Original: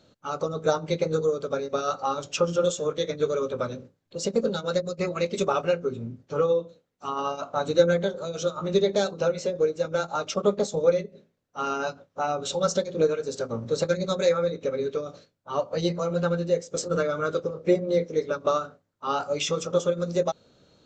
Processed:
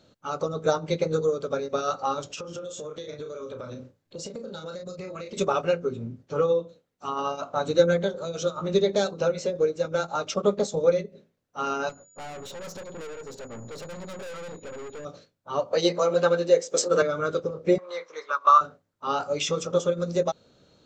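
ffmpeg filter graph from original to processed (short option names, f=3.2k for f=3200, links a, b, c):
-filter_complex "[0:a]asettb=1/sr,asplit=3[a][b][c];[a]atrim=end=2.274[d];[b]atrim=start=2.27:end=5.37,asetpts=PTS-STARTPTS,afade=t=in:d=0.004:c=qsin,afade=t=out:st=3.096:d=0.004:c=qsin,asplit=2[e][f];[f]adelay=32,volume=-6dB[g];[e][g]amix=inputs=2:normalize=0,atrim=end_sample=136710,acompressor=threshold=-33dB:ratio=12:attack=3.2:release=140:knee=1:detection=peak[h];[c]atrim=start=5.366[i];[d][h]acrossfade=d=0.004:c1=hsin:c2=qsin[j];[j][i]acrossfade=d=0.004:c1=qsin:c2=hsin,asettb=1/sr,asplit=3[k][l][m];[k]atrim=end=11.894[n];[l]atrim=start=11.89:end=15.05,asetpts=PTS-STARTPTS,afade=t=in:d=0.004:c=qsin,afade=t=out:st=3.156:d=0.004:c=qsin,highshelf=f=3.9k:g=-10,aeval=exprs='(tanh(70.8*val(0)+0.5)-tanh(0.5))/70.8':c=same,aeval=exprs='val(0)+0.00178*sin(2*PI*6900*n/s)':c=same[o];[m]atrim=start=15.046[p];[n][o]acrossfade=d=0.004:c1=hsin:c2=qsin[q];[q][p]acrossfade=d=0.004:c1=qsin:c2=hsin,asettb=1/sr,asplit=3[r][s][t];[r]atrim=end=15.734[u];[s]atrim=start=15.73:end=17.02,asetpts=PTS-STARTPTS,afade=t=in:d=0.004:c=qsin,afade=t=out:st=1.286:d=0.004:c=qsin,highpass=350,bandreject=f=1.4k:w=26,acontrast=58[v];[t]atrim=start=17.016[w];[u][v]acrossfade=d=0.004:c1=hsin:c2=qsin[x];[x][w]acrossfade=d=0.004:c1=qsin:c2=hsin,asettb=1/sr,asplit=3[y][z][aa];[y]atrim=end=17.784[ab];[z]atrim=start=17.78:end=18.61,asetpts=PTS-STARTPTS,afade=t=in:d=0.004:c=qsin,afade=t=out:st=0.826:d=0.004:c=qsin,highpass=f=1.1k:t=q:w=5.5,highshelf=f=6.7k:g=-6.5[ac];[aa]atrim=start=18.606[ad];[ab][ac]acrossfade=d=0.004:c1=hsin:c2=qsin[ae];[ae][ad]acrossfade=d=0.004:c1=qsin:c2=hsin"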